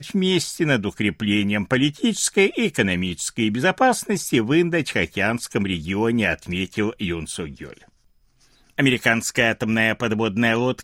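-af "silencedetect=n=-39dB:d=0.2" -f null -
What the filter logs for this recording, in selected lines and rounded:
silence_start: 7.82
silence_end: 8.70 | silence_duration: 0.88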